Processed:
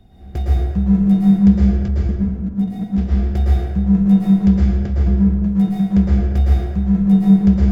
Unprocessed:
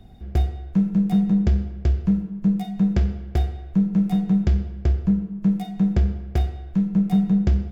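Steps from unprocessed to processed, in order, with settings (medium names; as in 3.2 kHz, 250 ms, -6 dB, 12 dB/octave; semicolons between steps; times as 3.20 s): 1.88–2.98 s: level held to a coarse grid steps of 16 dB; plate-style reverb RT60 1.6 s, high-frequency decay 0.5×, pre-delay 100 ms, DRR -6.5 dB; trim -2.5 dB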